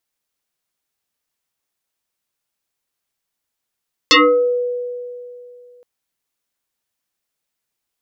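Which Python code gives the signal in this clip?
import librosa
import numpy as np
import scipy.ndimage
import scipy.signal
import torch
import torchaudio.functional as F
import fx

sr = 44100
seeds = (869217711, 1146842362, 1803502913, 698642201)

y = fx.fm2(sr, length_s=1.72, level_db=-6.0, carrier_hz=490.0, ratio=1.61, index=7.3, index_s=0.46, decay_s=2.68, shape='exponential')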